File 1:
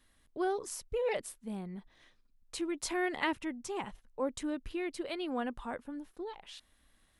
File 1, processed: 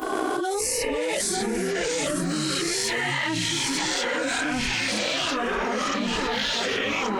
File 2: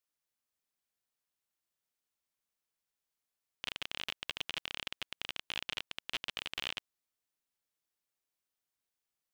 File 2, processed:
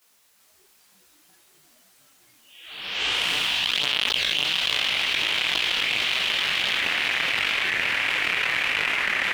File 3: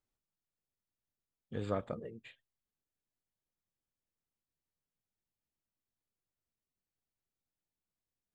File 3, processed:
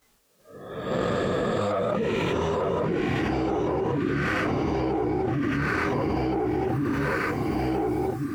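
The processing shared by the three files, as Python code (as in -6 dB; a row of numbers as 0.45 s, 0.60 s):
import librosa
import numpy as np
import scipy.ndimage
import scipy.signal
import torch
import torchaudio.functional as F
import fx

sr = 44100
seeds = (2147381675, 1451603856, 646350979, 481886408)

p1 = fx.spec_swells(x, sr, rise_s=1.27)
p2 = fx.rider(p1, sr, range_db=10, speed_s=2.0)
p3 = fx.dynamic_eq(p2, sr, hz=3900.0, q=1.3, threshold_db=-47.0, ratio=4.0, max_db=5)
p4 = fx.chorus_voices(p3, sr, voices=4, hz=0.93, base_ms=19, depth_ms=3.5, mix_pct=70)
p5 = fx.noise_reduce_blind(p4, sr, reduce_db=15)
p6 = fx.leveller(p5, sr, passes=1)
p7 = fx.low_shelf(p6, sr, hz=360.0, db=-4.0)
p8 = p7 + fx.echo_feedback(p7, sr, ms=896, feedback_pct=30, wet_db=-7.5, dry=0)
p9 = fx.echo_pitch(p8, sr, ms=384, semitones=-4, count=2, db_per_echo=-3.0)
p10 = fx.highpass(p9, sr, hz=59.0, slope=6)
p11 = fx.env_flatten(p10, sr, amount_pct=100)
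y = p11 * 10.0 ** (-26 / 20.0) / np.sqrt(np.mean(np.square(p11)))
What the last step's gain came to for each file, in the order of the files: -1.5 dB, +4.0 dB, +6.0 dB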